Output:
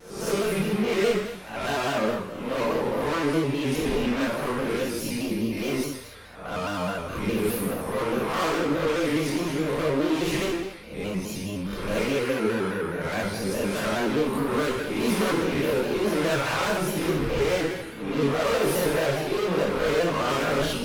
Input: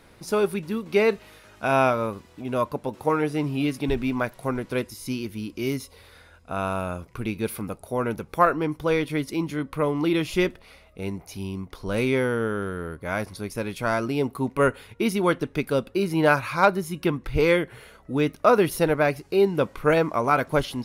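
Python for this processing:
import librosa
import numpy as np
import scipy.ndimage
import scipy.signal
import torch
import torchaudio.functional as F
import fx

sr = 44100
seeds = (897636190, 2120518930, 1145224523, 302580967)

y = fx.spec_swells(x, sr, rise_s=0.6)
y = fx.tube_stage(y, sr, drive_db=30.0, bias=0.7)
y = fx.rev_gated(y, sr, seeds[0], gate_ms=330, shape='falling', drr_db=-6.0)
y = fx.vibrato_shape(y, sr, shape='square', rate_hz=4.8, depth_cents=100.0)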